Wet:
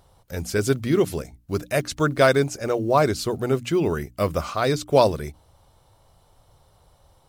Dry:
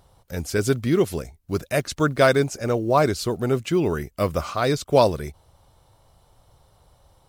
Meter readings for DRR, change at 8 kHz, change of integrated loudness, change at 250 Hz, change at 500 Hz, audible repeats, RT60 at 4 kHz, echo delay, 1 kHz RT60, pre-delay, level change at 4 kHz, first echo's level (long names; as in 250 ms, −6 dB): no reverb audible, 0.0 dB, 0.0 dB, −0.5 dB, 0.0 dB, no echo audible, no reverb audible, no echo audible, no reverb audible, no reverb audible, 0.0 dB, no echo audible